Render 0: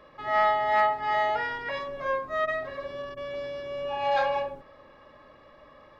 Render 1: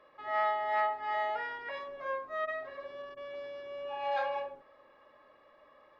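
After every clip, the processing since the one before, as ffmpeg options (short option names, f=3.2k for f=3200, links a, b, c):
-af "bass=f=250:g=-13,treble=f=4k:g=-7,volume=-7dB"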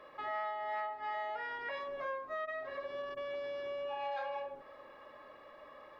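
-af "acompressor=threshold=-45dB:ratio=4,volume=6.5dB"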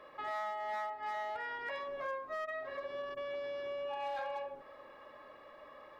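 -af "volume=33dB,asoftclip=hard,volume=-33dB"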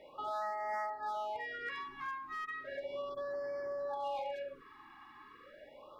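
-af "afftfilt=real='re*(1-between(b*sr/1024,510*pow(3200/510,0.5+0.5*sin(2*PI*0.35*pts/sr))/1.41,510*pow(3200/510,0.5+0.5*sin(2*PI*0.35*pts/sr))*1.41))':imag='im*(1-between(b*sr/1024,510*pow(3200/510,0.5+0.5*sin(2*PI*0.35*pts/sr))/1.41,510*pow(3200/510,0.5+0.5*sin(2*PI*0.35*pts/sr))*1.41))':win_size=1024:overlap=0.75,volume=1dB"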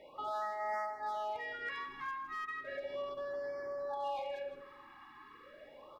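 -af "aecho=1:1:161|322|483:0.251|0.0754|0.0226"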